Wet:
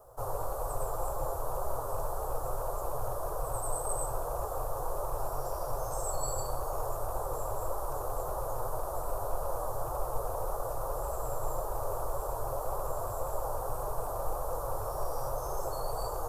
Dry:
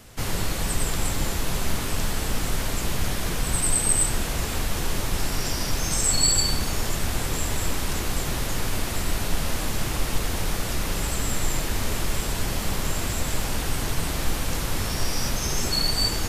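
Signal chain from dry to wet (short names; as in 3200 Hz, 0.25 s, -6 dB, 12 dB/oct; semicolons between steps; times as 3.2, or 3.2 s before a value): rattling part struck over -24 dBFS, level -19 dBFS; flange 1.8 Hz, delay 4.7 ms, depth 3.3 ms, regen -43%; requantised 12-bit, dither triangular; EQ curve 130 Hz 0 dB, 190 Hz -25 dB, 530 Hz +14 dB, 1200 Hz +9 dB, 2100 Hz -27 dB, 3200 Hz -23 dB, 12000 Hz +2 dB; gain -7 dB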